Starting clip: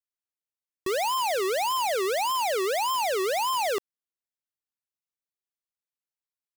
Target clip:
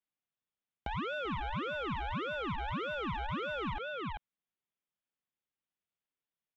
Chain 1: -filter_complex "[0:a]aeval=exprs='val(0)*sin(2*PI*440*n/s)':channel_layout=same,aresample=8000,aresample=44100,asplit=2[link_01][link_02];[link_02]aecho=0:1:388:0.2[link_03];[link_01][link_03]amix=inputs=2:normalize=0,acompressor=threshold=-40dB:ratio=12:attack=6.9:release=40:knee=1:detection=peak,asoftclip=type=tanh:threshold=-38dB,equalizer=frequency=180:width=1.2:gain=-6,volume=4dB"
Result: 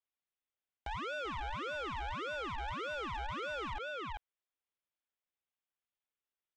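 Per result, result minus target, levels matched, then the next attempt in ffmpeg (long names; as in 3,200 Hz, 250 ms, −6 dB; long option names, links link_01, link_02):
soft clipping: distortion +10 dB; 250 Hz band −6.0 dB
-filter_complex "[0:a]aeval=exprs='val(0)*sin(2*PI*440*n/s)':channel_layout=same,aresample=8000,aresample=44100,asplit=2[link_01][link_02];[link_02]aecho=0:1:388:0.2[link_03];[link_01][link_03]amix=inputs=2:normalize=0,acompressor=threshold=-40dB:ratio=12:attack=6.9:release=40:knee=1:detection=peak,asoftclip=type=tanh:threshold=-31dB,equalizer=frequency=180:width=1.2:gain=-6,volume=4dB"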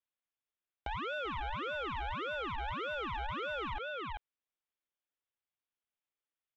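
250 Hz band −6.0 dB
-filter_complex "[0:a]aeval=exprs='val(0)*sin(2*PI*440*n/s)':channel_layout=same,aresample=8000,aresample=44100,asplit=2[link_01][link_02];[link_02]aecho=0:1:388:0.2[link_03];[link_01][link_03]amix=inputs=2:normalize=0,acompressor=threshold=-40dB:ratio=12:attack=6.9:release=40:knee=1:detection=peak,asoftclip=type=tanh:threshold=-31dB,equalizer=frequency=180:width=1.2:gain=6,volume=4dB"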